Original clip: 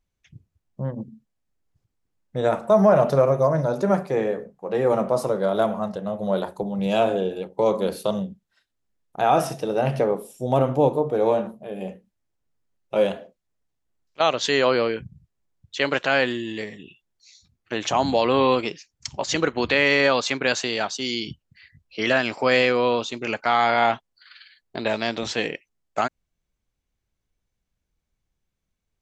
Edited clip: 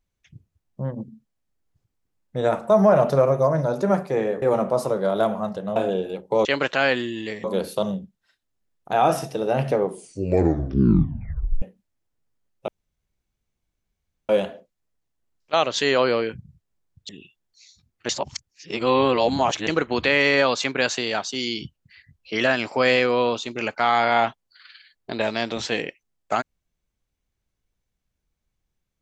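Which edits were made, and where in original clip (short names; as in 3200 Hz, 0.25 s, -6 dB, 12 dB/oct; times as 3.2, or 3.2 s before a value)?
4.42–4.81 cut
6.15–7.03 cut
10.06 tape stop 1.84 s
12.96 insert room tone 1.61 s
15.76–16.75 move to 7.72
17.75–19.33 reverse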